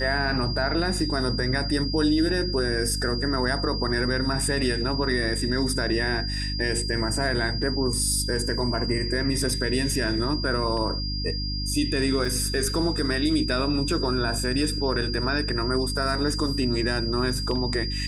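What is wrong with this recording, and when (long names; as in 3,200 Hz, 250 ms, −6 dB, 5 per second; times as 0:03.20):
mains hum 50 Hz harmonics 6 −30 dBFS
whistle 4,800 Hz −31 dBFS
0:12.25: drop-out 3 ms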